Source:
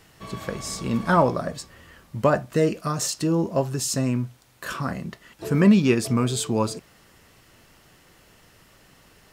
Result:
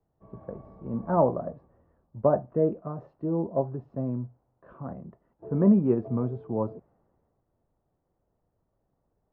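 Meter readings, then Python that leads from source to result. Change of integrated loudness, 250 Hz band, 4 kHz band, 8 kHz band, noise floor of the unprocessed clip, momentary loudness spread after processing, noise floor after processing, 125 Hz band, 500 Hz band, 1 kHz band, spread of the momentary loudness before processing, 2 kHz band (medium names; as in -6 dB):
-4.0 dB, -4.5 dB, under -40 dB, under -40 dB, -56 dBFS, 19 LU, -77 dBFS, -6.0 dB, -2.5 dB, -6.5 dB, 19 LU, under -20 dB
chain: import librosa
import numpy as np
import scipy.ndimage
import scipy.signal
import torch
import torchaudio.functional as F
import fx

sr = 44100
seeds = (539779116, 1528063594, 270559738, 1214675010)

y = fx.ladder_lowpass(x, sr, hz=960.0, resonance_pct=30)
y = fx.band_widen(y, sr, depth_pct=40)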